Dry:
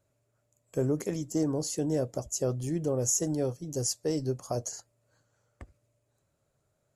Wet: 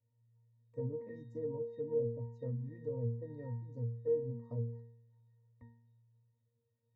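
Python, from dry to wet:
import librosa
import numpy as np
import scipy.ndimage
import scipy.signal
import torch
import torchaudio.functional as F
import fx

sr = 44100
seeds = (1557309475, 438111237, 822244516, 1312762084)

y = fx.octave_resonator(x, sr, note='A#', decay_s=0.63)
y = fx.env_lowpass_down(y, sr, base_hz=600.0, full_db=-43.0)
y = F.gain(torch.from_numpy(y), 9.5).numpy()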